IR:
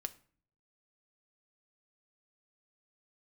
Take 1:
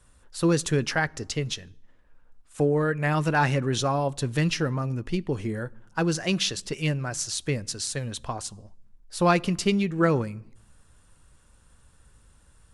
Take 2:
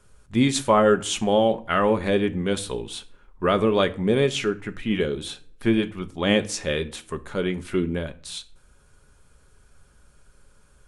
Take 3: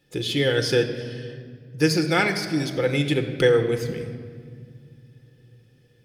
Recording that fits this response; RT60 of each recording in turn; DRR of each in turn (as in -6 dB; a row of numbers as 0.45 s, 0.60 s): 2; 0.90 s, 0.45 s, 2.2 s; 18.0 dB, 9.0 dB, 5.5 dB